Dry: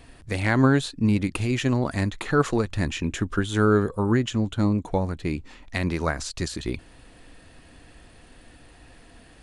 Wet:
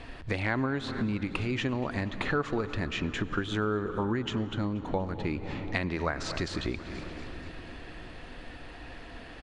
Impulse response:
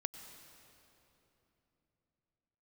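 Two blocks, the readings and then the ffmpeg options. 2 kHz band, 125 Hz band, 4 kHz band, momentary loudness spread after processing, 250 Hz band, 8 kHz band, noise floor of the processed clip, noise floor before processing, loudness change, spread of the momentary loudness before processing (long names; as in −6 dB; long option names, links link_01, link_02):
−4.0 dB, −8.5 dB, −3.5 dB, 16 LU, −8.0 dB, −11.5 dB, −45 dBFS, −51 dBFS, −7.5 dB, 10 LU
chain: -filter_complex "[0:a]lowshelf=frequency=60:gain=9,asplit=6[link_01][link_02][link_03][link_04][link_05][link_06];[link_02]adelay=240,afreqshift=-38,volume=-19dB[link_07];[link_03]adelay=480,afreqshift=-76,volume=-23.6dB[link_08];[link_04]adelay=720,afreqshift=-114,volume=-28.2dB[link_09];[link_05]adelay=960,afreqshift=-152,volume=-32.7dB[link_10];[link_06]adelay=1200,afreqshift=-190,volume=-37.3dB[link_11];[link_01][link_07][link_08][link_09][link_10][link_11]amix=inputs=6:normalize=0,asplit=2[link_12][link_13];[1:a]atrim=start_sample=2205[link_14];[link_13][link_14]afir=irnorm=-1:irlink=0,volume=-0.5dB[link_15];[link_12][link_15]amix=inputs=2:normalize=0,acompressor=threshold=-26dB:ratio=6,lowpass=3800,lowshelf=frequency=200:gain=-9.5,volume=2.5dB"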